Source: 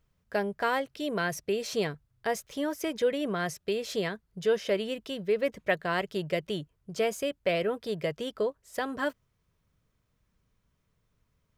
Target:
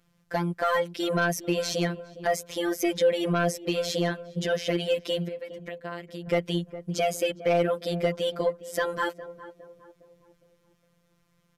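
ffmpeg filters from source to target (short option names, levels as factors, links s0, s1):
-filter_complex "[0:a]highpass=58,asplit=2[s0][s1];[s1]alimiter=limit=0.0631:level=0:latency=1:release=284,volume=1.41[s2];[s0][s2]amix=inputs=2:normalize=0,asettb=1/sr,asplit=3[s3][s4][s5];[s3]atrim=end=5.284[s6];[s4]atrim=start=5.28:end=6.28,asetpts=PTS-STARTPTS,afade=t=in:d=0.004:c=qsin,afade=t=out:st=0.996:d=0.004:c=qsin,acompressor=threshold=0.0178:ratio=16[s7];[s5]atrim=start=6.276[s8];[s6][s7]acrossfade=d=0.004:c1=hsin:c2=qsin[s9];[s9][s8]acrossfade=d=0.004:c1=qsin:c2=hsin,afftfilt=real='hypot(re,im)*cos(PI*b)':imag='0':win_size=1024:overlap=0.75,asoftclip=type=tanh:threshold=0.133,asplit=2[s10][s11];[s11]adelay=410,lowpass=f=850:p=1,volume=0.224,asplit=2[s12][s13];[s13]adelay=410,lowpass=f=850:p=1,volume=0.5,asplit=2[s14][s15];[s15]adelay=410,lowpass=f=850:p=1,volume=0.5,asplit=2[s16][s17];[s17]adelay=410,lowpass=f=850:p=1,volume=0.5,asplit=2[s18][s19];[s19]adelay=410,lowpass=f=850:p=1,volume=0.5[s20];[s12][s14][s16][s18][s20]amix=inputs=5:normalize=0[s21];[s10][s21]amix=inputs=2:normalize=0,aresample=32000,aresample=44100,volume=1.58"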